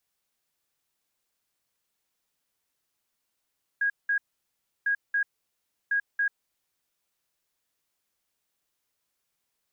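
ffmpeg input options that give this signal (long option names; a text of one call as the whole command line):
ffmpeg -f lavfi -i "aevalsrc='0.0794*sin(2*PI*1640*t)*clip(min(mod(mod(t,1.05),0.28),0.09-mod(mod(t,1.05),0.28))/0.005,0,1)*lt(mod(t,1.05),0.56)':duration=3.15:sample_rate=44100" out.wav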